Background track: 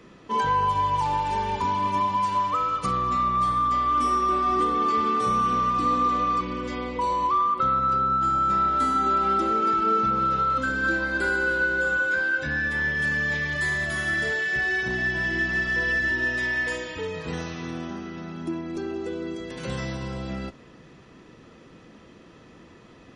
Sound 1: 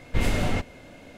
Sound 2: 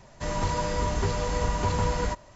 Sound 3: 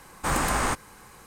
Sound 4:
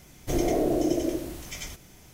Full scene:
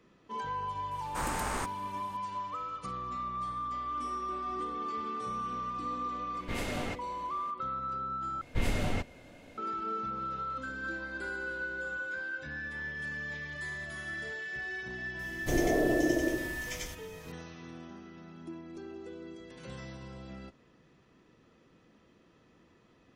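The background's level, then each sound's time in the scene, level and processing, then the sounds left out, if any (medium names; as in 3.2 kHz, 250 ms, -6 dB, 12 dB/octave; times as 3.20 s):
background track -13.5 dB
0.91 s: add 3 -9.5 dB
6.34 s: add 1 -7 dB + bass shelf 140 Hz -11 dB
8.41 s: replace with 1 -6.5 dB
15.19 s: add 4 -3 dB
not used: 2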